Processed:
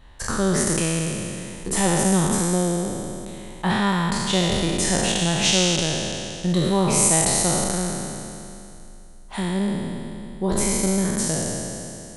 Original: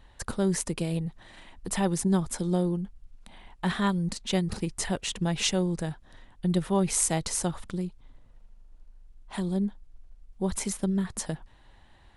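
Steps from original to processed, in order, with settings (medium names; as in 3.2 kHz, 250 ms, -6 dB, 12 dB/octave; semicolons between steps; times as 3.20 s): spectral sustain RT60 2.77 s; trim +3 dB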